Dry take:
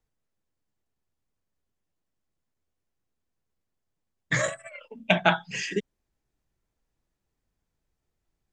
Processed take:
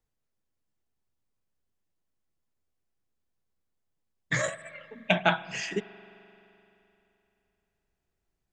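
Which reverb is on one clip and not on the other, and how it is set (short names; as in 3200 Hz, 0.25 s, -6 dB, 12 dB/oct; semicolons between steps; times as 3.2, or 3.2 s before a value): spring tank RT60 3.1 s, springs 43 ms, chirp 50 ms, DRR 16 dB; gain -2.5 dB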